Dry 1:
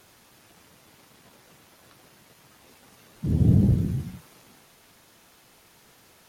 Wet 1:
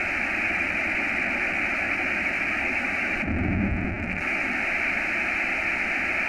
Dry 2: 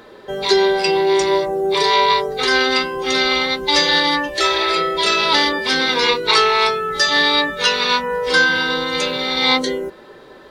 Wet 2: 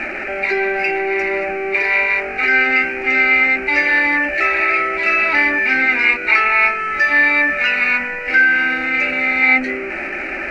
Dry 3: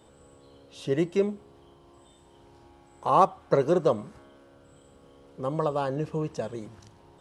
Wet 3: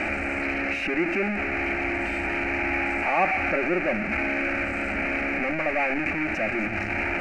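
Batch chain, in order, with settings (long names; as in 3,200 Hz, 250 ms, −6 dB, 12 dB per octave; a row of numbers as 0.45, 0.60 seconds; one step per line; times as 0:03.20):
converter with a step at zero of −16.5 dBFS
low-pass with resonance 2,400 Hz, resonance Q 8.2
phaser with its sweep stopped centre 690 Hz, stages 8
level −4 dB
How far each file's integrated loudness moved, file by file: −1.0, +1.5, +2.0 LU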